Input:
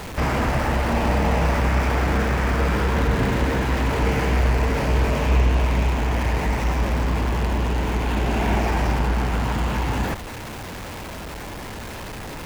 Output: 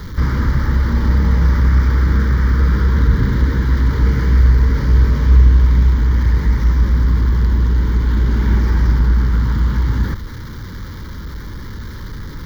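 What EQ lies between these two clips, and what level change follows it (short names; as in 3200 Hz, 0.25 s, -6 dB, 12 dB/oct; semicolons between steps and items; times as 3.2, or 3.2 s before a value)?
low shelf 170 Hz +11 dB; fixed phaser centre 2600 Hz, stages 6; 0.0 dB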